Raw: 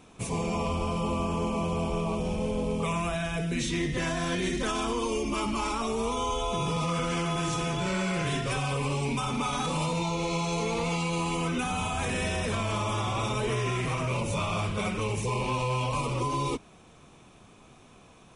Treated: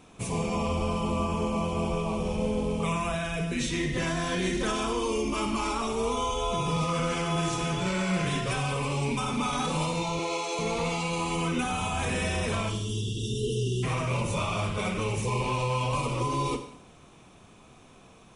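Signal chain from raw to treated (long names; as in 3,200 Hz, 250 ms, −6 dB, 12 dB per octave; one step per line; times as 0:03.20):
0:10.19–0:10.59: Butterworth high-pass 270 Hz
0:12.69–0:13.83: time-frequency box erased 490–2,700 Hz
four-comb reverb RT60 0.71 s, combs from 33 ms, DRR 8 dB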